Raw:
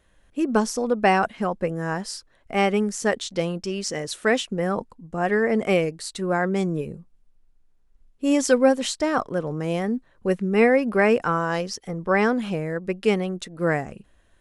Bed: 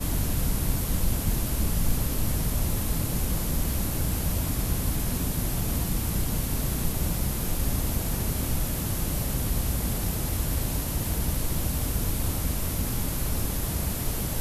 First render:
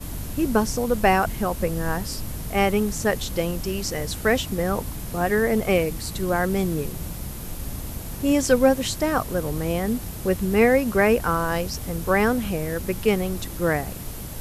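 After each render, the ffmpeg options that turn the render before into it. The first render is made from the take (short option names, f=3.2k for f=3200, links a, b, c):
-filter_complex "[1:a]volume=-5.5dB[a];[0:a][a]amix=inputs=2:normalize=0"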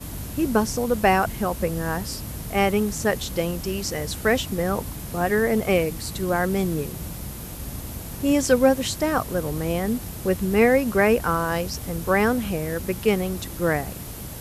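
-af "highpass=46"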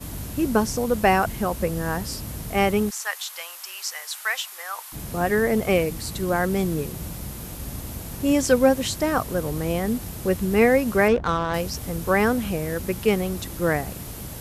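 -filter_complex "[0:a]asplit=3[a][b][c];[a]afade=t=out:st=2.89:d=0.02[d];[b]highpass=f=950:w=0.5412,highpass=f=950:w=1.3066,afade=t=in:st=2.89:d=0.02,afade=t=out:st=4.92:d=0.02[e];[c]afade=t=in:st=4.92:d=0.02[f];[d][e][f]amix=inputs=3:normalize=0,asettb=1/sr,asplit=3[g][h][i];[g]atrim=end=11.084[j];[h]atrim=start=11.08:end=11.54,asetpts=PTS-STARTPTS,afade=t=in:d=0.004:c=qsin,afade=t=out:st=0.456:d=0.004:c=qsin,adynamicsmooth=sensitivity=1.5:basefreq=600[k];[i]atrim=start=11.536[l];[j][k]acrossfade=d=0.004:c1=hsin:c2=qsin[m];[m][l]acrossfade=d=0.004:c1=qsin:c2=hsin"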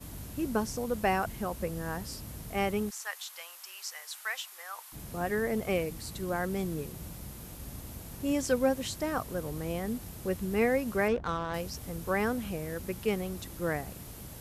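-af "volume=-9.5dB"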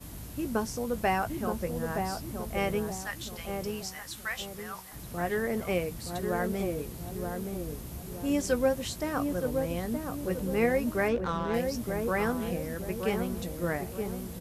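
-filter_complex "[0:a]asplit=2[a][b];[b]adelay=17,volume=-11dB[c];[a][c]amix=inputs=2:normalize=0,asplit=2[d][e];[e]adelay=922,lowpass=f=850:p=1,volume=-3.5dB,asplit=2[f][g];[g]adelay=922,lowpass=f=850:p=1,volume=0.46,asplit=2[h][i];[i]adelay=922,lowpass=f=850:p=1,volume=0.46,asplit=2[j][k];[k]adelay=922,lowpass=f=850:p=1,volume=0.46,asplit=2[l][m];[m]adelay=922,lowpass=f=850:p=1,volume=0.46,asplit=2[n][o];[o]adelay=922,lowpass=f=850:p=1,volume=0.46[p];[f][h][j][l][n][p]amix=inputs=6:normalize=0[q];[d][q]amix=inputs=2:normalize=0"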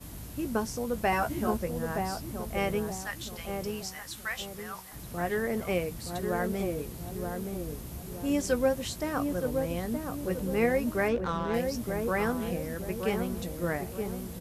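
-filter_complex "[0:a]asettb=1/sr,asplit=3[a][b][c];[a]atrim=end=1.114[d];[b]atrim=start=1.11:end=1.57,asetpts=PTS-STARTPTS,afade=t=in:d=0.004:c=qsin,afade=t=out:st=0.456:d=0.004:c=qsin,asplit=2[e][f];[f]adelay=14,volume=-2dB[g];[e][g]amix=inputs=2:normalize=0,atrim=end_sample=20286[h];[c]atrim=start=1.566[i];[d][h]acrossfade=d=0.004:c1=hsin:c2=qsin[j];[j][i]acrossfade=d=0.004:c1=qsin:c2=hsin"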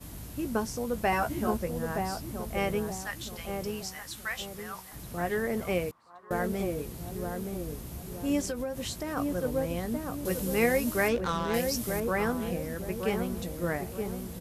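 -filter_complex "[0:a]asettb=1/sr,asplit=3[a][b][c];[a]atrim=end=5.914[d];[b]atrim=start=5.91:end=6.31,asetpts=PTS-STARTPTS,afade=t=in:d=0.004:c=qsin,afade=t=out:st=0.396:d=0.004:c=qsin,bandpass=f=1.1k:t=q:w=5.8[e];[c]atrim=start=6.306[f];[d][e]acrossfade=d=0.004:c1=hsin:c2=qsin[g];[g][f]acrossfade=d=0.004:c1=qsin:c2=hsin,asplit=3[h][i][j];[h]afade=t=out:st=8.43:d=0.02[k];[i]acompressor=threshold=-29dB:ratio=10:attack=3.2:release=140:knee=1:detection=peak,afade=t=in:st=8.43:d=0.02,afade=t=out:st=9.16:d=0.02[l];[j]afade=t=in:st=9.16:d=0.02[m];[k][l][m]amix=inputs=3:normalize=0,asettb=1/sr,asplit=3[n][o][p];[n]atrim=end=10.254[q];[o]atrim=start=10.25:end=12,asetpts=PTS-STARTPTS,afade=t=in:d=0.004:c=qsin,afade=t=out:st=1.746:d=0.004:c=qsin,highshelf=f=2.9k:g=10.5[r];[p]atrim=start=11.996[s];[q][r]acrossfade=d=0.004:c1=hsin:c2=qsin[t];[t][s]acrossfade=d=0.004:c1=qsin:c2=hsin"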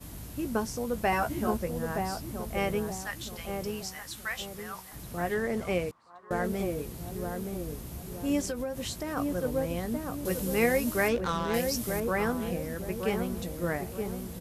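-filter_complex "[0:a]asettb=1/sr,asplit=3[a][b][c];[a]atrim=end=5.344[d];[b]atrim=start=5.34:end=6.45,asetpts=PTS-STARTPTS,afade=t=in:d=0.004:c=qsin,afade=t=out:st=1.106:d=0.004:c=qsin,lowpass=9.8k[e];[c]atrim=start=6.446[f];[d][e]acrossfade=d=0.004:c1=hsin:c2=qsin[g];[g][f]acrossfade=d=0.004:c1=qsin:c2=hsin"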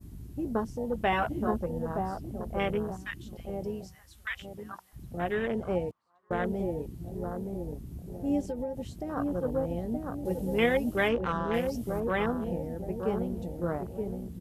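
-af "afwtdn=0.02,adynamicequalizer=threshold=0.00112:dfrequency=3000:dqfactor=4.2:tfrequency=3000:tqfactor=4.2:attack=5:release=100:ratio=0.375:range=3:mode=boostabove:tftype=bell"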